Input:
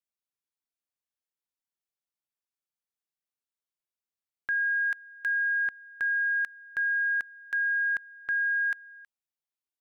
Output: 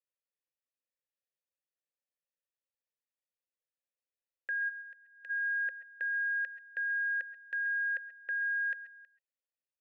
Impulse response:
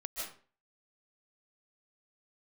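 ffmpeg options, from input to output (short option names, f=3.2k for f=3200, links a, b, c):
-filter_complex "[0:a]asplit=3[a][b][c];[a]afade=t=out:st=4.68:d=0.02[d];[b]acompressor=threshold=-46dB:ratio=4,afade=t=in:st=4.68:d=0.02,afade=t=out:st=5.29:d=0.02[e];[c]afade=t=in:st=5.29:d=0.02[f];[d][e][f]amix=inputs=3:normalize=0,asplit=3[g][h][i];[g]bandpass=f=530:t=q:w=8,volume=0dB[j];[h]bandpass=f=1.84k:t=q:w=8,volume=-6dB[k];[i]bandpass=f=2.48k:t=q:w=8,volume=-9dB[l];[j][k][l]amix=inputs=3:normalize=0,asplit=2[m][n];[1:a]atrim=start_sample=2205,atrim=end_sample=6174[o];[n][o]afir=irnorm=-1:irlink=0,volume=-1.5dB[p];[m][p]amix=inputs=2:normalize=0,volume=2.5dB"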